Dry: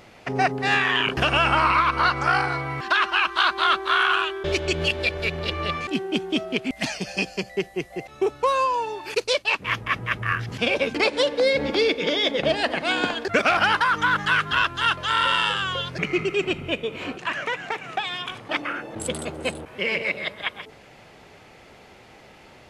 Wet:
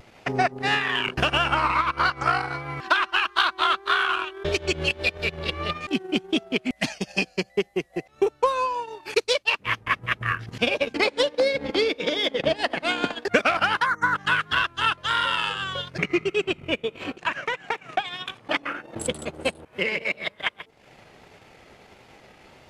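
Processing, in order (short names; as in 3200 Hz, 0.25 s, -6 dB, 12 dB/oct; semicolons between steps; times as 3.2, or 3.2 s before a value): spectral delete 13.86–14.15, 2200–5400 Hz; vibrato 1.6 Hz 53 cents; in parallel at -8 dB: soft clip -21.5 dBFS, distortion -9 dB; on the sum: transient shaper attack +6 dB, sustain -12 dB; gain -5 dB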